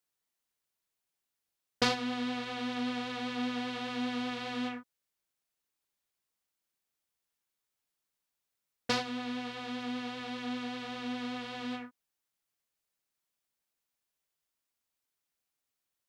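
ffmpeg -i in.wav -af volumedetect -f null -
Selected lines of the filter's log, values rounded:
mean_volume: -40.0 dB
max_volume: -12.9 dB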